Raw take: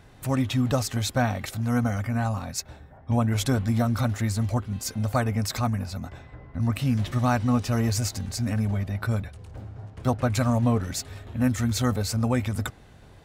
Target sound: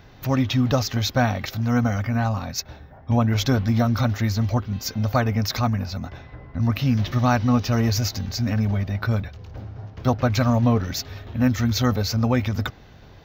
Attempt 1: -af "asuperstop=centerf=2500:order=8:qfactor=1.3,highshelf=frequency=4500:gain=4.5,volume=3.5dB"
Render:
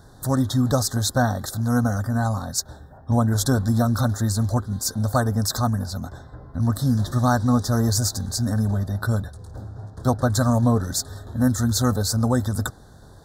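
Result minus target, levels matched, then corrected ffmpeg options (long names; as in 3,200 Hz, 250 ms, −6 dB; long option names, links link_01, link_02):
8,000 Hz band +7.0 dB
-af "asuperstop=centerf=9700:order=8:qfactor=1.3,highshelf=frequency=4500:gain=4.5,volume=3.5dB"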